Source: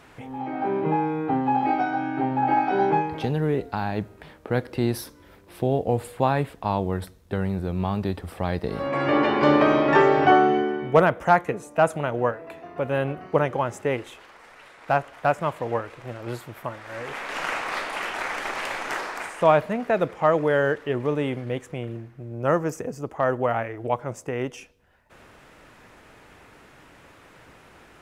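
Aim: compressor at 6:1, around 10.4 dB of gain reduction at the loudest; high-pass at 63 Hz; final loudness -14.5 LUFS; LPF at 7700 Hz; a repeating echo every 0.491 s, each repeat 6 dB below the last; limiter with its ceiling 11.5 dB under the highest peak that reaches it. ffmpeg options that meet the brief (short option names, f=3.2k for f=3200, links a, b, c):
-af "highpass=63,lowpass=7.7k,acompressor=threshold=-23dB:ratio=6,alimiter=limit=-23dB:level=0:latency=1,aecho=1:1:491|982|1473|1964|2455|2946:0.501|0.251|0.125|0.0626|0.0313|0.0157,volume=18.5dB"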